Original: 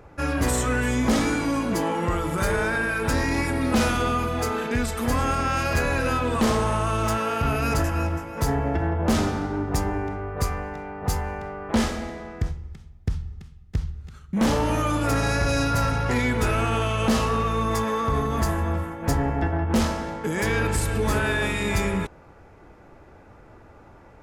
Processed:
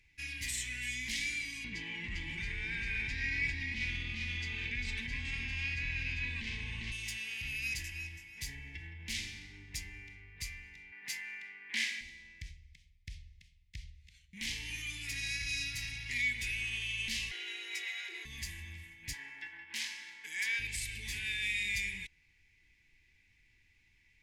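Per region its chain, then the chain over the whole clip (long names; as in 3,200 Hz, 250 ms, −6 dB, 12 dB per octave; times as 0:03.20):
0:01.64–0:06.92: head-to-tape spacing loss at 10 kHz 28 dB + single-tap delay 400 ms −3.5 dB + envelope flattener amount 100%
0:10.92–0:12.01: high-pass filter 200 Hz 24 dB per octave + parametric band 1,500 Hz +10.5 dB 1.4 octaves
0:17.31–0:18.25: high-shelf EQ 6,500 Hz −9 dB + frequency shifter +290 Hz + envelope flattener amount 70%
0:19.13–0:20.59: high-pass filter 390 Hz + flat-topped bell 1,200 Hz +8.5 dB 1.2 octaves
whole clip: elliptic high-pass filter 2,100 Hz, stop band 40 dB; spectral tilt −4 dB per octave; level +3.5 dB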